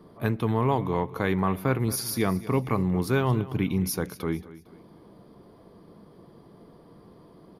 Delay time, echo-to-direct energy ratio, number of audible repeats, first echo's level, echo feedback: 227 ms, −16.5 dB, 3, −17.0 dB, 39%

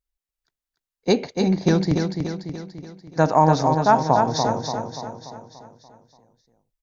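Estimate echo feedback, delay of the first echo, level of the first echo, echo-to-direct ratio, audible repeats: 52%, 290 ms, −5.5 dB, −4.0 dB, 6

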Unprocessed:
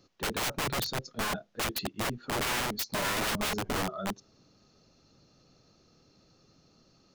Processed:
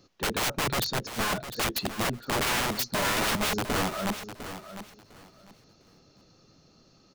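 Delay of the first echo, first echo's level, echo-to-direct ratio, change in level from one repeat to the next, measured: 703 ms, −11.5 dB, −11.5 dB, −13.5 dB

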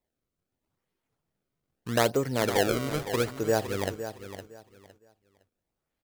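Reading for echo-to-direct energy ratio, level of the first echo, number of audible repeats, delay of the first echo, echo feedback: −11.0 dB, −11.0 dB, 2, 511 ms, 23%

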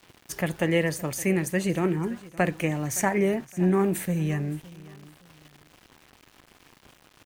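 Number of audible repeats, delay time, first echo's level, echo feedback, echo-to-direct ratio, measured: 2, 566 ms, −20.0 dB, 30%, −19.5 dB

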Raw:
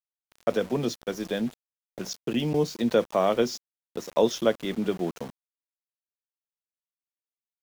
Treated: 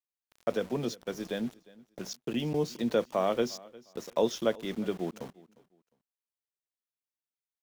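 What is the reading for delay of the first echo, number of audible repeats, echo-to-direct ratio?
355 ms, 2, −22.0 dB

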